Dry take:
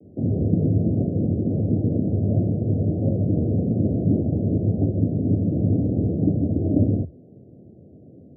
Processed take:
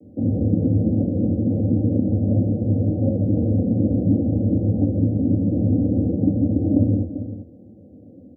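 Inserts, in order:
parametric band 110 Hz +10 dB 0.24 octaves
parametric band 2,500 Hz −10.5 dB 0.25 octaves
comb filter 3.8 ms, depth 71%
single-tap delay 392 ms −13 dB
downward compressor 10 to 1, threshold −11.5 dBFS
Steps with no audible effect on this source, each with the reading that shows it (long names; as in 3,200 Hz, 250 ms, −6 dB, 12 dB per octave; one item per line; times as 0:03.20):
parametric band 2,500 Hz: nothing at its input above 540 Hz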